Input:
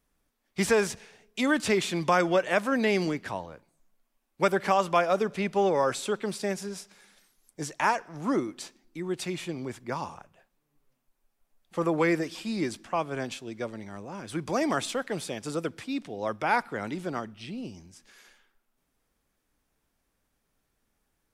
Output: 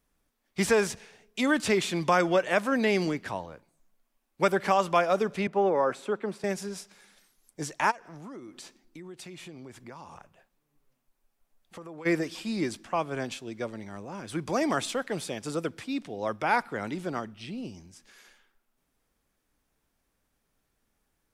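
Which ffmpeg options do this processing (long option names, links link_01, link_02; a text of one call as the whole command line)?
ffmpeg -i in.wav -filter_complex "[0:a]asettb=1/sr,asplit=3[link_01][link_02][link_03];[link_01]atrim=end=5.474[link_04];[link_02]atrim=start=5.47:end=6.44,asetpts=PTS-STARTPTS,afade=type=in:duration=0.004:curve=qsin,afade=type=out:start_time=0.966:duration=0.004:curve=qsin,acrossover=split=160 2100:gain=0.2 1 0.2[link_05][link_06][link_07];[link_05][link_06][link_07]amix=inputs=3:normalize=0[link_08];[link_03]atrim=start=6.436[link_09];[link_04][link_08]acrossfade=duration=0.004:curve1=hsin:curve2=qsin[link_10];[link_10][link_09]acrossfade=duration=0.004:curve1=qsin:curve2=hsin,asplit=3[link_11][link_12][link_13];[link_11]afade=type=out:start_time=7.9:duration=0.02[link_14];[link_12]acompressor=threshold=-41dB:ratio=6:attack=3.2:release=140:knee=1:detection=peak,afade=type=in:start_time=7.9:duration=0.02,afade=type=out:start_time=12.05:duration=0.02[link_15];[link_13]afade=type=in:start_time=12.05:duration=0.02[link_16];[link_14][link_15][link_16]amix=inputs=3:normalize=0" out.wav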